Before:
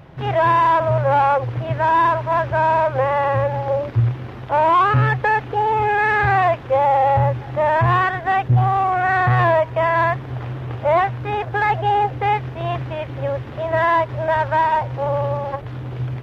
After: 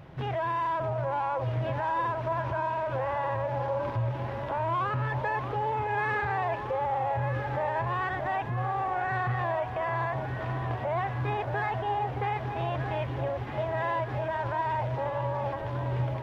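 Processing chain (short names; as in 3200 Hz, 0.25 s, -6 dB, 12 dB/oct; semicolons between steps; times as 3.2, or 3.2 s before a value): limiter -19 dBFS, peak gain reduction 11 dB; echo with dull and thin repeats by turns 0.622 s, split 1100 Hz, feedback 79%, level -7.5 dB; gain -5 dB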